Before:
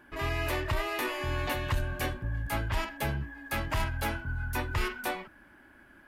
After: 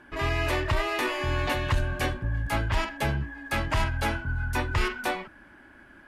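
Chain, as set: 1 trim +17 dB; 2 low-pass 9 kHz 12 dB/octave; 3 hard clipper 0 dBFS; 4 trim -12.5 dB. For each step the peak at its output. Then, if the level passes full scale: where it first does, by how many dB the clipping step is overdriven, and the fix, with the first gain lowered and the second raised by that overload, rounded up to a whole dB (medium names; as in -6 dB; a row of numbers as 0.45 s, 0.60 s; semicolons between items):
-2.0 dBFS, -2.0 dBFS, -2.0 dBFS, -14.5 dBFS; nothing clips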